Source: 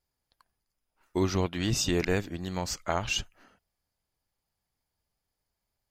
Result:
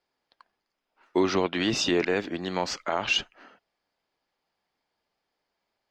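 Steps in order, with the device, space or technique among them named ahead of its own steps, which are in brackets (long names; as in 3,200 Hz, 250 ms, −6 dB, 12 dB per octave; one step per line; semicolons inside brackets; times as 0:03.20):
DJ mixer with the lows and highs turned down (three-way crossover with the lows and the highs turned down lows −21 dB, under 220 Hz, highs −24 dB, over 4,900 Hz; brickwall limiter −22.5 dBFS, peak gain reduction 9 dB)
level +8.5 dB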